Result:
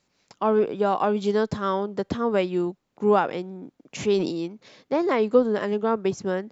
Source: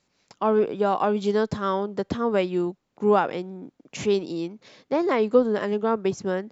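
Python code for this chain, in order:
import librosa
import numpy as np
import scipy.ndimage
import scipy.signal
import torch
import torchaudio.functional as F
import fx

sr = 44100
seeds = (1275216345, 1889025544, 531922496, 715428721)

y = fx.sustainer(x, sr, db_per_s=54.0, at=(4.03, 4.46))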